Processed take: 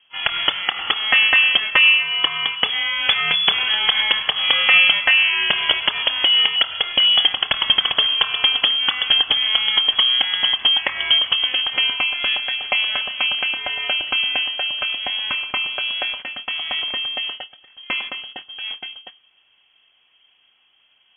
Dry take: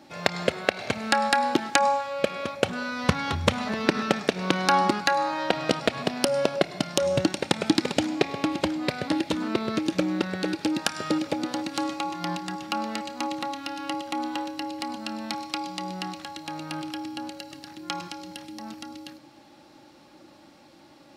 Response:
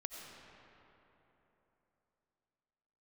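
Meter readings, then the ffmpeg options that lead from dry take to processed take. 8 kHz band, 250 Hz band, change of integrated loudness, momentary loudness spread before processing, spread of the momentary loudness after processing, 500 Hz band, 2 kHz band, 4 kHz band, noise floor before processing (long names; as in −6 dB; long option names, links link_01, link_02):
below −40 dB, −16.5 dB, +11.0 dB, 13 LU, 12 LU, −9.0 dB, +13.5 dB, +19.0 dB, −53 dBFS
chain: -af "agate=range=-16dB:threshold=-39dB:ratio=16:detection=peak,apsyclip=15.5dB,lowpass=frequency=3000:width_type=q:width=0.5098,lowpass=frequency=3000:width_type=q:width=0.6013,lowpass=frequency=3000:width_type=q:width=0.9,lowpass=frequency=3000:width_type=q:width=2.563,afreqshift=-3500,volume=-6dB"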